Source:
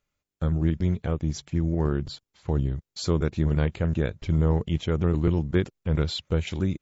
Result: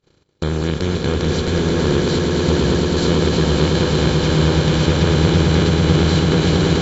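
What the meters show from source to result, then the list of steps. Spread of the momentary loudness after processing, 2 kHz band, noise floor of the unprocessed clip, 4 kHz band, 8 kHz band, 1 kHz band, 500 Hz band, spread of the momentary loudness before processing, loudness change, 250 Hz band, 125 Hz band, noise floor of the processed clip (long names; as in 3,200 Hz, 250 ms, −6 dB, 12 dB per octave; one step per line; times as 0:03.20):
5 LU, +15.0 dB, below −85 dBFS, +16.0 dB, can't be measured, +15.0 dB, +12.0 dB, 6 LU, +10.0 dB, +10.5 dB, +8.5 dB, −57 dBFS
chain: compressor on every frequency bin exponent 0.2
noise gate −25 dBFS, range −47 dB
echo that builds up and dies away 110 ms, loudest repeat 8, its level −7 dB
level −1 dB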